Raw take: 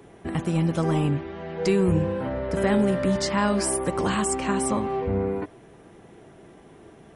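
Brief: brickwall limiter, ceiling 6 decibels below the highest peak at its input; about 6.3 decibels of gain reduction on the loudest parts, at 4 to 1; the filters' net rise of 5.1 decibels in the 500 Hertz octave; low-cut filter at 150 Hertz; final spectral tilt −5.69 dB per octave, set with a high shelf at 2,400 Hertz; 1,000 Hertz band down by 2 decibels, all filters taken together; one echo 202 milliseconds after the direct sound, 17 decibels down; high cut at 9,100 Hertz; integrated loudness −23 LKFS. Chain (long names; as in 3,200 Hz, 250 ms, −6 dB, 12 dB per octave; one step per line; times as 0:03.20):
high-pass filter 150 Hz
low-pass filter 9,100 Hz
parametric band 500 Hz +8 dB
parametric band 1,000 Hz −4.5 dB
high-shelf EQ 2,400 Hz −6.5 dB
downward compressor 4 to 1, threshold −21 dBFS
brickwall limiter −19 dBFS
single-tap delay 202 ms −17 dB
level +5 dB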